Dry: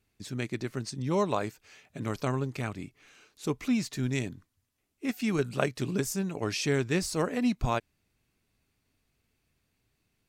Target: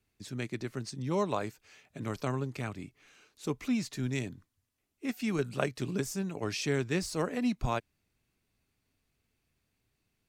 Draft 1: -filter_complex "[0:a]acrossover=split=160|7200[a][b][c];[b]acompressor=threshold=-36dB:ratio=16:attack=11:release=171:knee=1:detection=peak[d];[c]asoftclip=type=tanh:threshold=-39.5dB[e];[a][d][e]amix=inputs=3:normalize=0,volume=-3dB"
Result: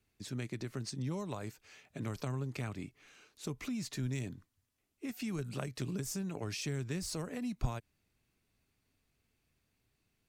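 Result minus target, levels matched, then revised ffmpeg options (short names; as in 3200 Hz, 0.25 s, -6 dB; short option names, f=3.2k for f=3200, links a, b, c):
compressor: peak gain reduction +14.5 dB
-filter_complex "[0:a]acrossover=split=160|7200[a][b][c];[c]asoftclip=type=tanh:threshold=-39.5dB[d];[a][b][d]amix=inputs=3:normalize=0,volume=-3dB"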